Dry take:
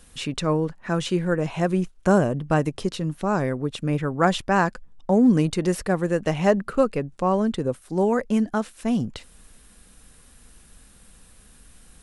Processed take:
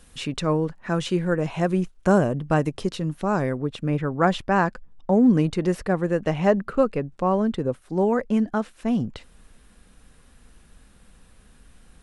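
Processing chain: high shelf 5200 Hz -3.5 dB, from 3.58 s -12 dB

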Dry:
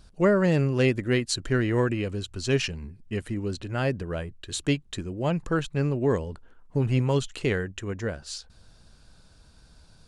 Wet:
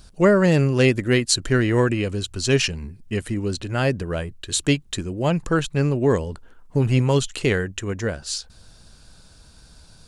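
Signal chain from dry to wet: high shelf 4800 Hz +7 dB; gain +5 dB

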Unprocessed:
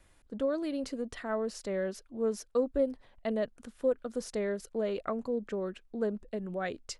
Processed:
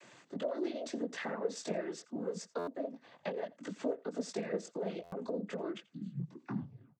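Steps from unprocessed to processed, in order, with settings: tape stop at the end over 1.09 s; HPF 140 Hz; in parallel at -3 dB: limiter -28.5 dBFS, peak gain reduction 10 dB; on the sum: compressor 12:1, threshold -41 dBFS, peak gain reduction 20 dB; spectral repair 5.88–6.16, 240–2700 Hz before; chorus 1.6 Hz, delay 18.5 ms, depth 2.4 ms; noise vocoder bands 16; on a send: echo 85 ms -22.5 dB; on the sum: stuck buffer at 2.58/5.03, samples 512, times 7; gain +9.5 dB

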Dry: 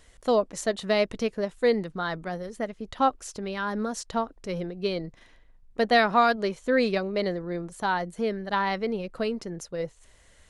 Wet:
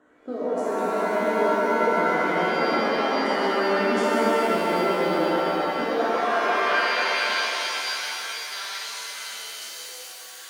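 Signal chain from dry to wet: Wiener smoothing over 9 samples; recorder AGC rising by 30 dB/s; resonant high shelf 1800 Hz -6.5 dB, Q 3; in parallel at +2 dB: limiter -17.5 dBFS, peak gain reduction 11.5 dB; on the sum: rotary speaker horn 0.65 Hz; delay with a stepping band-pass 0.113 s, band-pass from 390 Hz, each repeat 0.7 oct, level -5 dB; high-pass sweep 280 Hz -> 3900 Hz, 5.85–7.38; reverse; compressor 6:1, threshold -27 dBFS, peak gain reduction 18 dB; reverse; shimmer reverb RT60 3.7 s, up +7 st, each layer -2 dB, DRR -9.5 dB; gain -5.5 dB

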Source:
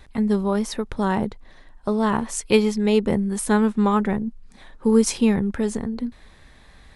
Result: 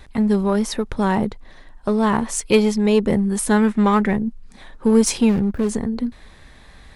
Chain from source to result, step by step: 5.29–5.69 median filter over 41 samples; in parallel at -4.5 dB: hard clip -20 dBFS, distortion -7 dB; 3.56–4.13 on the sum: bell 2000 Hz +11 dB -> +4.5 dB 0.57 oct

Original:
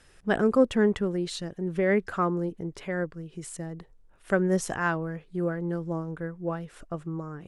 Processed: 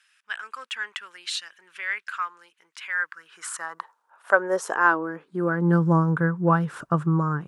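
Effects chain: band shelf 1200 Hz +10.5 dB 1.1 oct; AGC gain up to 13.5 dB; high-pass sweep 2500 Hz -> 140 Hz, 2.81–5.97; gain -6 dB

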